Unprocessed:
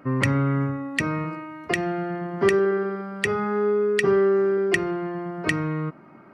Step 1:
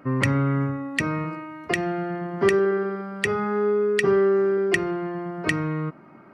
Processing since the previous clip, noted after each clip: nothing audible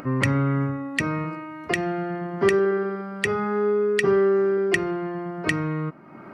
upward compressor, threshold -32 dBFS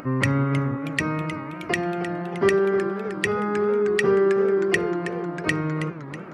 warbling echo 0.316 s, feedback 56%, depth 205 cents, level -11.5 dB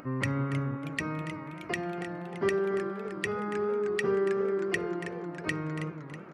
echo 0.283 s -13.5 dB; gain -8.5 dB

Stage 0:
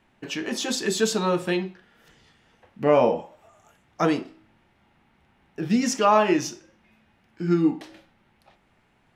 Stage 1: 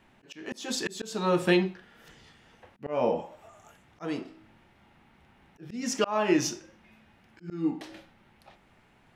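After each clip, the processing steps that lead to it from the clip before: auto swell 0.478 s; gain +2.5 dB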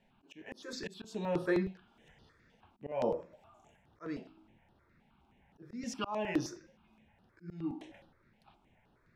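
high shelf 5200 Hz -12 dB; step phaser 9.6 Hz 320–7400 Hz; gain -5 dB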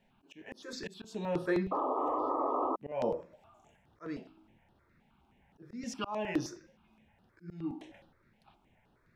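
painted sound noise, 1.71–2.76, 250–1300 Hz -32 dBFS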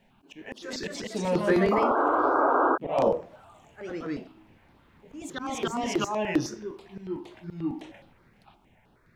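echoes that change speed 0.294 s, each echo +2 st, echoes 2; gain +7 dB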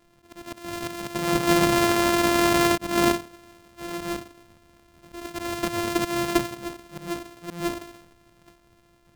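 sample sorter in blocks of 128 samples; gain +2.5 dB

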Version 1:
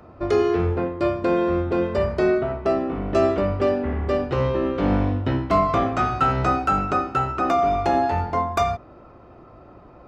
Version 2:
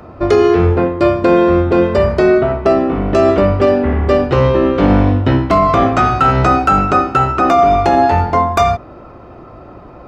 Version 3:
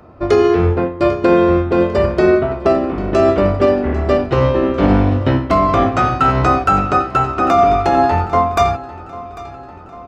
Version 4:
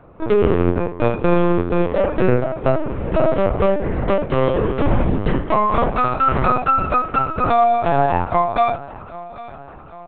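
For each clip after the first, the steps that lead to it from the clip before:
maximiser +11.5 dB; gain -1 dB
feedback echo 0.797 s, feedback 57%, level -14 dB; upward expander 1.5:1, over -20 dBFS; gain -1 dB
LPC vocoder at 8 kHz pitch kept; gain -3 dB

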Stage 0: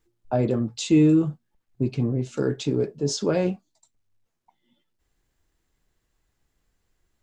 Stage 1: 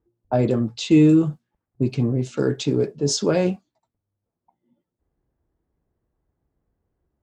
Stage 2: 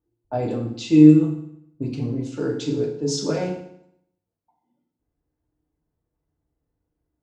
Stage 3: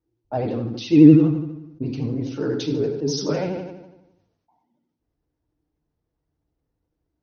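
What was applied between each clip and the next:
HPF 49 Hz; low-pass opened by the level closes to 740 Hz, open at -21.5 dBFS; high shelf 4700 Hz +4.5 dB; gain +3 dB
FDN reverb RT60 0.71 s, low-frequency decay 1.1×, high-frequency decay 0.9×, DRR -0.5 dB; gain -7.5 dB
brick-wall FIR low-pass 6300 Hz; vibrato 12 Hz 91 cents; sustainer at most 58 dB/s

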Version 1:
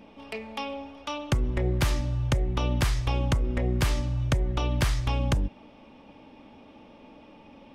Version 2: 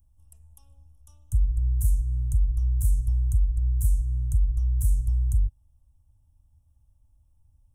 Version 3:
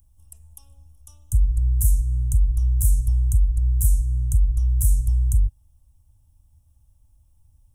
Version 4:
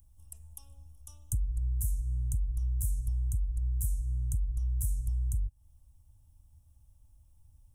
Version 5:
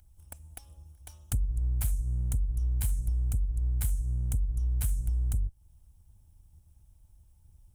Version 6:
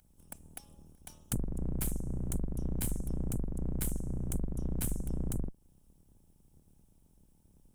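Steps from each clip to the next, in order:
inverse Chebyshev band-stop 180–4800 Hz, stop band 40 dB; gain +5 dB
high shelf 3400 Hz +7.5 dB; gain +4 dB
compressor 4:1, threshold -27 dBFS, peak gain reduction 12 dB; gain -2.5 dB
minimum comb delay 1.3 ms; gain +2.5 dB
octaver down 2 oct, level +1 dB; resonant low shelf 120 Hz -9 dB, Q 1.5

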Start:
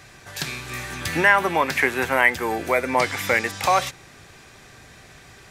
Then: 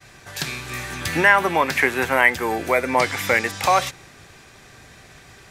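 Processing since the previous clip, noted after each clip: expander -45 dBFS; gain +1.5 dB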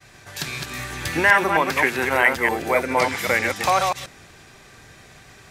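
reverse delay 0.131 s, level -4 dB; gain -2 dB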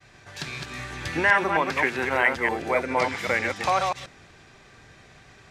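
air absorption 64 m; gain -3.5 dB

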